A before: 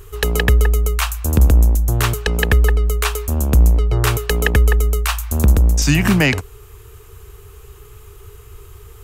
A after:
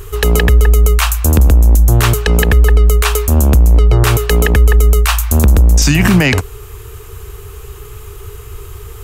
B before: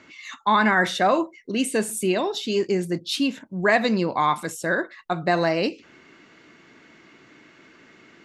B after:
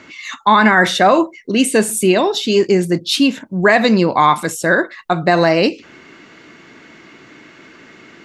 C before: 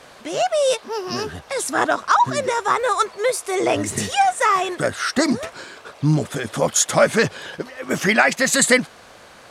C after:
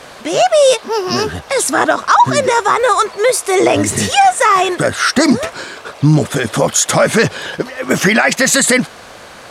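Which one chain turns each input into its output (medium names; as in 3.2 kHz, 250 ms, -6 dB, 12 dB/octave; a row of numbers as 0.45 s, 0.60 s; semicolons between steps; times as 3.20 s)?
peak limiter -11 dBFS; peak normalisation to -1.5 dBFS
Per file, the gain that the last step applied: +9.5 dB, +9.5 dB, +9.5 dB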